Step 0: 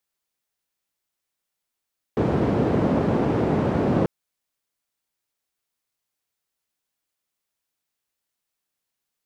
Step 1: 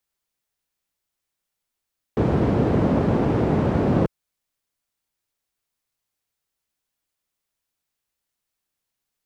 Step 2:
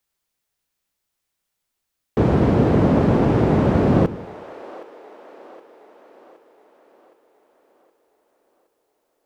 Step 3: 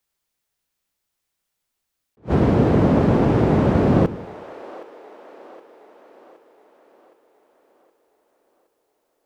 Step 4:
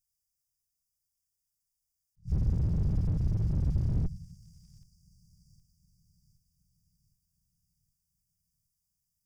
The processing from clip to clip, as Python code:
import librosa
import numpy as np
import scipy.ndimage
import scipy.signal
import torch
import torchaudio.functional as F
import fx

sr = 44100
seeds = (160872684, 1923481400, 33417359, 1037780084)

y1 = fx.low_shelf(x, sr, hz=100.0, db=8.0)
y2 = fx.echo_split(y1, sr, split_hz=410.0, low_ms=93, high_ms=768, feedback_pct=52, wet_db=-15)
y2 = y2 * 10.0 ** (3.5 / 20.0)
y3 = fx.attack_slew(y2, sr, db_per_s=380.0)
y4 = fx.lower_of_two(y3, sr, delay_ms=2.0)
y4 = fx.brickwall_bandstop(y4, sr, low_hz=200.0, high_hz=4600.0)
y4 = fx.slew_limit(y4, sr, full_power_hz=7.4)
y4 = y4 * 10.0 ** (-2.5 / 20.0)